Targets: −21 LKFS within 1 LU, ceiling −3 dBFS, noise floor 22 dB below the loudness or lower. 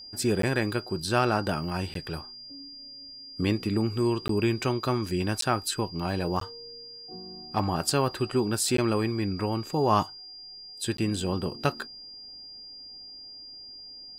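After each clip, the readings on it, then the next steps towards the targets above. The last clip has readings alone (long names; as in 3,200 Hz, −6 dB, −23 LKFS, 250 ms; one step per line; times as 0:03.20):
number of dropouts 7; longest dropout 13 ms; interfering tone 4,800 Hz; level of the tone −42 dBFS; integrated loudness −28.0 LKFS; sample peak −9.0 dBFS; target loudness −21.0 LKFS
→ repair the gap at 0:00.42/0:01.94/0:04.28/0:05.41/0:06.40/0:08.77/0:10.97, 13 ms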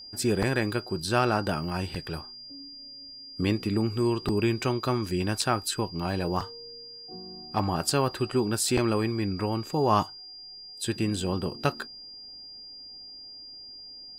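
number of dropouts 0; interfering tone 4,800 Hz; level of the tone −42 dBFS
→ notch filter 4,800 Hz, Q 30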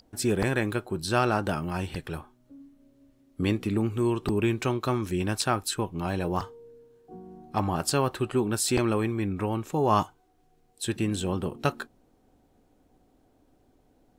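interfering tone none found; integrated loudness −28.0 LKFS; sample peak −9.0 dBFS; target loudness −21.0 LKFS
→ level +7 dB
brickwall limiter −3 dBFS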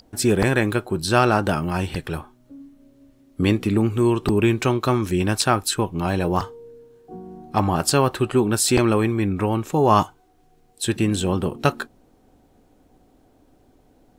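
integrated loudness −21.0 LKFS; sample peak −3.0 dBFS; background noise floor −58 dBFS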